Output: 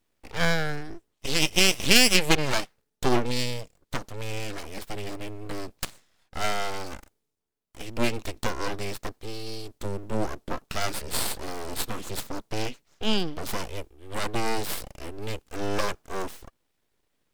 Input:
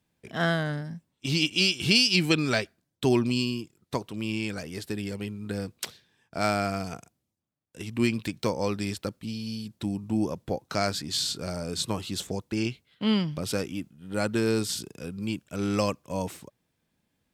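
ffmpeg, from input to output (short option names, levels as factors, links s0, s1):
-af "aeval=exprs='0.473*(cos(1*acos(clip(val(0)/0.473,-1,1)))-cos(1*PI/2))+0.15*(cos(4*acos(clip(val(0)/0.473,-1,1)))-cos(4*PI/2))':c=same,aeval=exprs='abs(val(0))':c=same,volume=1.33"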